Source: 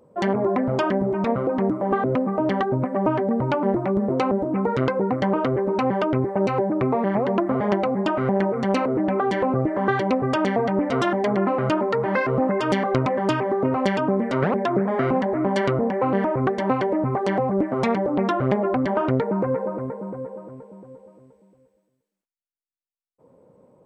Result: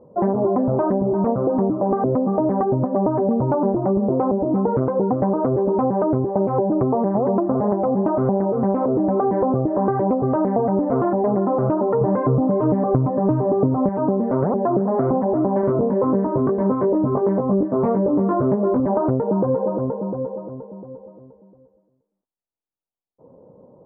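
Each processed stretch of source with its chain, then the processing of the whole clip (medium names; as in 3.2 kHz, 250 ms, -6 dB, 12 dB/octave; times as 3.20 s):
12.01–13.89 s: bass shelf 330 Hz +10 dB + comb 6.8 ms, depth 40%
15.61–18.80 s: band-stop 760 Hz, Q 5.3 + doubling 20 ms -2.5 dB
whole clip: low-pass 1 kHz 24 dB/octave; compression, threshold -22 dBFS; trim +6.5 dB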